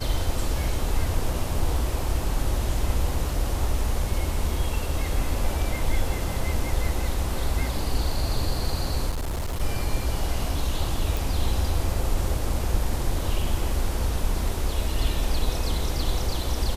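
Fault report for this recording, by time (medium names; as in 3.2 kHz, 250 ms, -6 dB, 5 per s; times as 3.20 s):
9.09–9.61 s: clipped -24.5 dBFS
11.17 s: pop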